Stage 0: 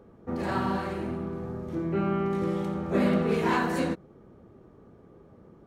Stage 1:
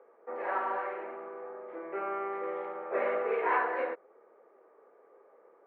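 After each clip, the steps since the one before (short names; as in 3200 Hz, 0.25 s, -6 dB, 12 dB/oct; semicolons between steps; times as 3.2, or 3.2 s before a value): elliptic band-pass 460–2200 Hz, stop band 70 dB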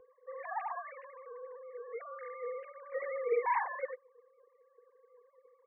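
sine-wave speech; bell 270 Hz -6 dB 0.59 oct; fixed phaser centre 910 Hz, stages 8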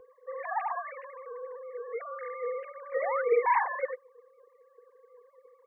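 painted sound rise, 2.96–3.22, 440–1600 Hz -39 dBFS; gain +6 dB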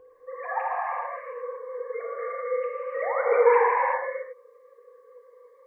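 non-linear reverb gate 0.4 s flat, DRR -4 dB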